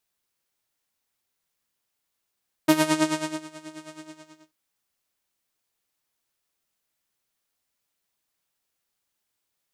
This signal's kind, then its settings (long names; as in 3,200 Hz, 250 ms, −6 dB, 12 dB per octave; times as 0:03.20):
subtractive patch with tremolo D#4, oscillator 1 saw, oscillator 2 saw, interval 0 semitones, detune 16 cents, sub −18 dB, filter lowpass, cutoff 7,000 Hz, Q 1.9, filter envelope 1 octave, filter sustain 30%, attack 8.9 ms, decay 0.76 s, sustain −22.5 dB, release 0.60 s, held 1.24 s, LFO 9.3 Hz, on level 13 dB